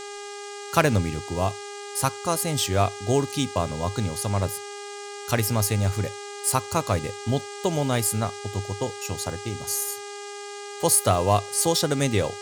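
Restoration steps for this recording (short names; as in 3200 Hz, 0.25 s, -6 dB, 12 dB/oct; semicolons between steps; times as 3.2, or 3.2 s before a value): clip repair -7.5 dBFS; de-hum 407.2 Hz, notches 8; noise print and reduce 30 dB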